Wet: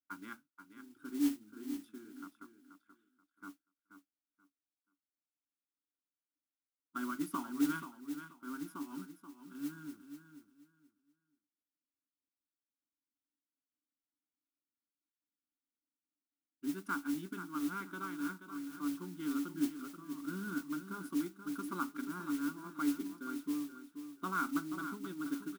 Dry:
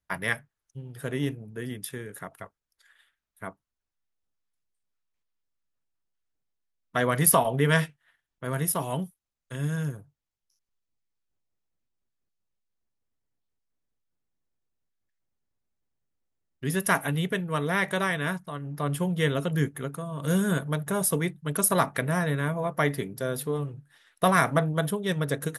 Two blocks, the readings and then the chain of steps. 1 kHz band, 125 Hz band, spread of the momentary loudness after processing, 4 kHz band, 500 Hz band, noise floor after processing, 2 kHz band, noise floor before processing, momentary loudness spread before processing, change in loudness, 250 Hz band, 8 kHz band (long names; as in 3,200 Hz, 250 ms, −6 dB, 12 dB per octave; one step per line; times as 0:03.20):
−14.0 dB, −25.5 dB, 17 LU, −17.0 dB, −22.5 dB, below −85 dBFS, −15.5 dB, below −85 dBFS, 15 LU, −12.5 dB, −6.0 dB, −21.0 dB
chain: pair of resonant band-passes 650 Hz, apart 2.3 octaves
phaser with its sweep stopped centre 480 Hz, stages 6
noise that follows the level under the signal 16 dB
repeating echo 481 ms, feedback 23%, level −10 dB
level +1.5 dB